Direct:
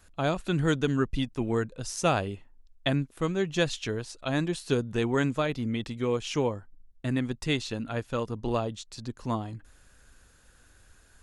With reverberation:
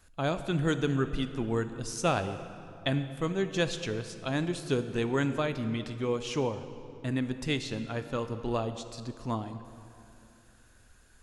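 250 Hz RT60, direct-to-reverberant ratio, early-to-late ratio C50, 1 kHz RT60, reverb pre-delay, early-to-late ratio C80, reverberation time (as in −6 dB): 3.0 s, 9.5 dB, 10.5 dB, 2.7 s, 21 ms, 11.5 dB, 2.8 s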